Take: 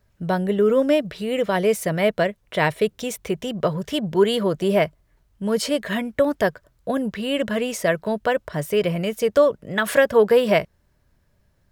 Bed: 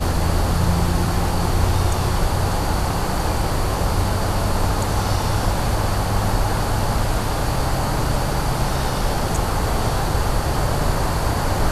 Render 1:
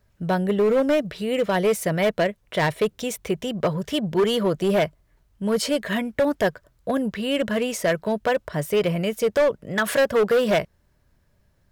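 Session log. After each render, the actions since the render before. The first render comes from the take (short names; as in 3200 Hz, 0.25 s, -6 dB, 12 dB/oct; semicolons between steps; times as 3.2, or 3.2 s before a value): overloaded stage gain 15 dB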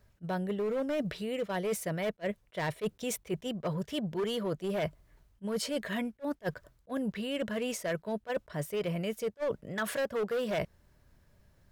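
reverse; compressor 6:1, threshold -31 dBFS, peak gain reduction 13.5 dB; reverse; attack slew limiter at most 560 dB/s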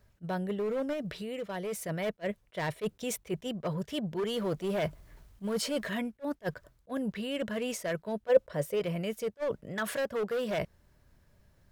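0.93–1.89 compressor 2:1, threshold -35 dBFS; 4.36–5.9 G.711 law mismatch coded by mu; 8.28–8.8 bell 520 Hz +13.5 dB 0.31 oct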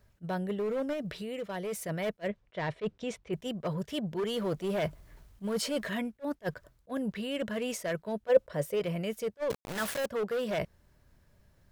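2.28–3.33 air absorption 130 m; 9.5–10.06 requantised 6-bit, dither none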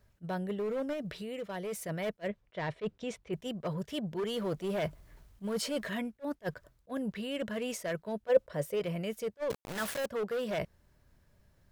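gain -2 dB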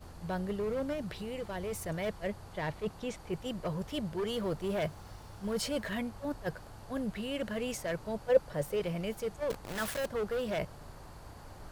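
add bed -29.5 dB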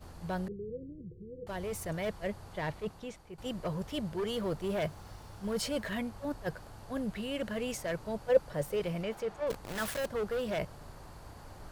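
0.48–1.47 rippled Chebyshev low-pass 510 Hz, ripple 9 dB; 2.69–3.38 fade out, to -13.5 dB; 9.03–9.47 overdrive pedal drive 12 dB, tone 1700 Hz, clips at -25 dBFS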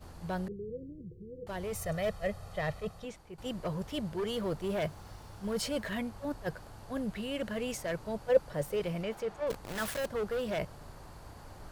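1.75–3.05 comb 1.6 ms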